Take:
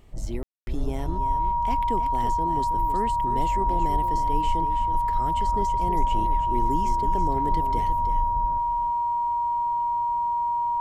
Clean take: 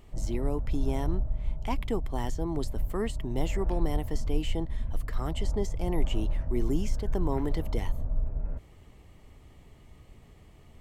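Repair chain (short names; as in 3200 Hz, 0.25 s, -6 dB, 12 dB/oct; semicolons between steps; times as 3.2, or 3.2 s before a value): notch 950 Hz, Q 30; room tone fill 0.43–0.67; inverse comb 0.324 s -9.5 dB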